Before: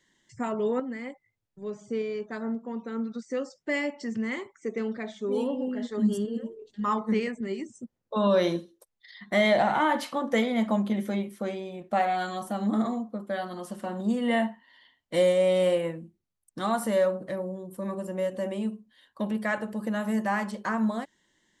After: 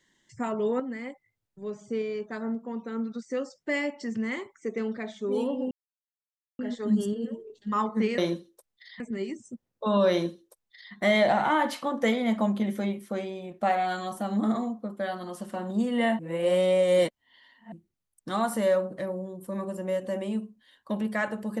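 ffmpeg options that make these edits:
-filter_complex "[0:a]asplit=6[s0][s1][s2][s3][s4][s5];[s0]atrim=end=5.71,asetpts=PTS-STARTPTS,afade=t=out:st=5.706:d=0.004:c=hsin,apad=pad_dur=0.88[s6];[s1]atrim=start=5.71:end=7.302,asetpts=PTS-STARTPTS,afade=t=in:d=0.004:c=hsin[s7];[s2]atrim=start=8.408:end=9.232[s8];[s3]atrim=start=7.298:end=14.492[s9];[s4]atrim=start=14.488:end=16.022,asetpts=PTS-STARTPTS,areverse[s10];[s5]atrim=start=16.018[s11];[s6][s7]concat=n=2:v=0:a=1[s12];[s12][s8]acrossfade=d=0.004:c1=hsin:c2=hsin[s13];[s13][s9]acrossfade=d=0.004:c1=hsin:c2=hsin[s14];[s14][s10]acrossfade=d=0.004:c1=hsin:c2=hsin[s15];[s15][s11]acrossfade=d=0.004:c1=hsin:c2=hsin"

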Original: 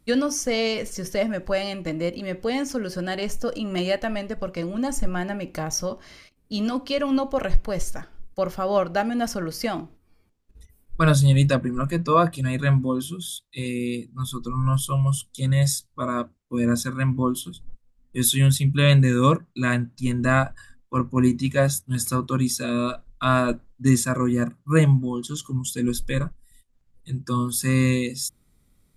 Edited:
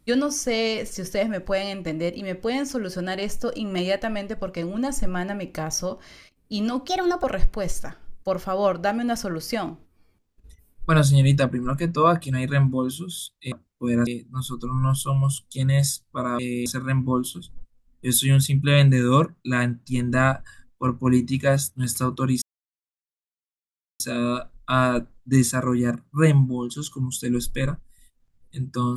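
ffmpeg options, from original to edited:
-filter_complex "[0:a]asplit=8[s0][s1][s2][s3][s4][s5][s6][s7];[s0]atrim=end=6.884[s8];[s1]atrim=start=6.88:end=7.35,asetpts=PTS-STARTPTS,asetrate=57771,aresample=44100,atrim=end_sample=15822,asetpts=PTS-STARTPTS[s9];[s2]atrim=start=7.346:end=13.632[s10];[s3]atrim=start=16.218:end=16.772[s11];[s4]atrim=start=13.898:end=16.222[s12];[s5]atrim=start=13.628:end=13.902[s13];[s6]atrim=start=16.768:end=22.53,asetpts=PTS-STARTPTS,afade=t=out:st=5.758:d=0.004:c=hsin,apad=pad_dur=1.58[s14];[s7]atrim=start=22.53,asetpts=PTS-STARTPTS,afade=t=in:d=0.004:c=hsin[s15];[s8][s9]acrossfade=d=0.004:c1=hsin:c2=hsin[s16];[s16][s10]acrossfade=d=0.004:c1=hsin:c2=hsin[s17];[s17][s11]acrossfade=d=0.004:c1=hsin:c2=hsin[s18];[s18][s12]acrossfade=d=0.004:c1=hsin:c2=hsin[s19];[s19][s13]acrossfade=d=0.004:c1=hsin:c2=hsin[s20];[s14][s15]concat=n=2:v=0:a=1[s21];[s20][s21]acrossfade=d=0.004:c1=hsin:c2=hsin"

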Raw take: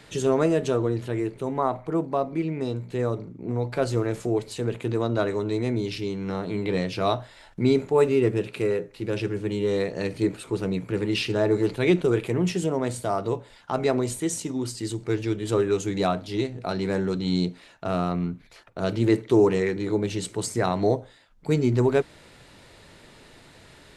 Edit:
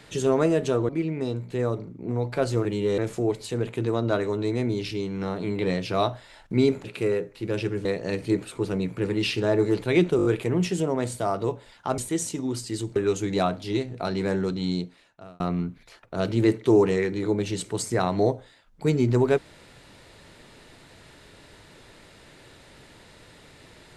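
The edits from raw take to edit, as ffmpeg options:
-filter_complex "[0:a]asplit=13[s0][s1][s2][s3][s4][s5][s6][s7][s8][s9][s10][s11][s12];[s0]atrim=end=0.892[s13];[s1]atrim=start=2.288:end=4.052[s14];[s2]atrim=start=9.438:end=9.772[s15];[s3]atrim=start=4.048:end=7.912[s16];[s4]atrim=start=8.428:end=9.442[s17];[s5]atrim=start=9.768:end=12.112[s18];[s6]atrim=start=12.088:end=12.112[s19];[s7]atrim=start=12.088:end=12.112[s20];[s8]atrim=start=12.088:end=12.112[s21];[s9]atrim=start=12.088:end=13.822[s22];[s10]atrim=start=14.088:end=15.072[s23];[s11]atrim=start=15.598:end=18.04,asetpts=PTS-STARTPTS,afade=t=out:st=1.472:d=0.97[s24];[s12]atrim=start=18.04,asetpts=PTS-STARTPTS,afade=t=in:d=0.004:c=hsin[s25];[s13][s14]acrossfade=d=0.004:c1=hsin:c2=hsin[s26];[s26][s15]acrossfade=d=0.004:c1=hsin:c2=hsin[s27];[s27][s16]acrossfade=d=0.004:c1=hsin:c2=hsin[s28];[s28][s17]acrossfade=d=0.004:c1=hsin:c2=hsin[s29];[s29][s18]acrossfade=d=0.004:c1=hsin:c2=hsin[s30];[s30][s19]acrossfade=d=0.004:c1=hsin:c2=hsin[s31];[s31][s20]acrossfade=d=0.004:c1=hsin:c2=hsin[s32];[s32][s21]acrossfade=d=0.004:c1=hsin:c2=hsin[s33];[s33][s22]acrossfade=d=0.004:c1=hsin:c2=hsin[s34];[s34][s23]acrossfade=d=0.004:c1=hsin:c2=hsin[s35];[s24][s25]concat=n=2:v=0:a=1[s36];[s35][s36]acrossfade=d=0.004:c1=hsin:c2=hsin"

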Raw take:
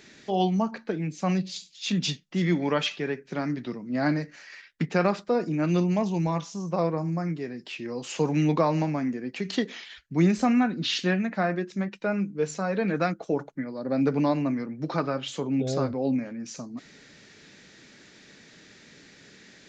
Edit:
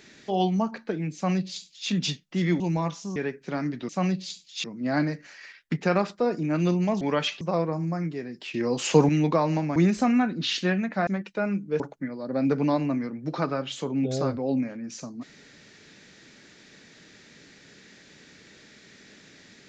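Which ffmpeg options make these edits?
-filter_complex "[0:a]asplit=12[s0][s1][s2][s3][s4][s5][s6][s7][s8][s9][s10][s11];[s0]atrim=end=2.602[s12];[s1]atrim=start=6.098:end=6.662[s13];[s2]atrim=start=2.998:end=3.732[s14];[s3]atrim=start=1.148:end=1.902[s15];[s4]atrim=start=3.728:end=6.102[s16];[s5]atrim=start=2.598:end=3.002[s17];[s6]atrim=start=6.658:end=7.792[s18];[s7]atrim=start=7.788:end=8.342,asetpts=PTS-STARTPTS,volume=2.37[s19];[s8]atrim=start=8.338:end=9.012[s20];[s9]atrim=start=10.168:end=11.482[s21];[s10]atrim=start=11.738:end=12.472[s22];[s11]atrim=start=13.358[s23];[s12][s13]acrossfade=d=0.004:c1=hsin:c2=hsin[s24];[s24][s14]acrossfade=d=0.004:c1=hsin:c2=hsin[s25];[s25][s15]acrossfade=d=0.004:c1=hsin:c2=hsin[s26];[s26][s16]acrossfade=d=0.004:c1=hsin:c2=hsin[s27];[s27][s17]acrossfade=d=0.004:c1=hsin:c2=hsin[s28];[s28][s18]acrossfade=d=0.004:c1=hsin:c2=hsin[s29];[s29][s19]acrossfade=d=0.004:c1=hsin:c2=hsin[s30];[s30][s20]acrossfade=d=0.004:c1=hsin:c2=hsin[s31];[s31][s21]acrossfade=d=0.004:c1=hsin:c2=hsin[s32];[s32][s22]acrossfade=d=0.004:c1=hsin:c2=hsin[s33];[s33][s23]acrossfade=d=0.004:c1=hsin:c2=hsin"

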